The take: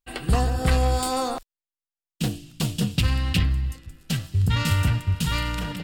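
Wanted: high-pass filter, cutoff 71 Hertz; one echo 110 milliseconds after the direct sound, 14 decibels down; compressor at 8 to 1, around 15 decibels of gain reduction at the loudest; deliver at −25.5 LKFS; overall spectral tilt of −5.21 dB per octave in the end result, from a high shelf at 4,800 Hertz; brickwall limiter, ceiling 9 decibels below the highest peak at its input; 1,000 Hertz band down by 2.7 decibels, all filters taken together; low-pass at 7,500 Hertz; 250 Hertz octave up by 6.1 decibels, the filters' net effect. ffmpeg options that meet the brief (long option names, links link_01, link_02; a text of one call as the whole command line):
ffmpeg -i in.wav -af "highpass=71,lowpass=7500,equalizer=frequency=250:width_type=o:gain=8.5,equalizer=frequency=1000:width_type=o:gain=-5,highshelf=frequency=4800:gain=7.5,acompressor=threshold=-31dB:ratio=8,alimiter=level_in=2.5dB:limit=-24dB:level=0:latency=1,volume=-2.5dB,aecho=1:1:110:0.2,volume=11.5dB" out.wav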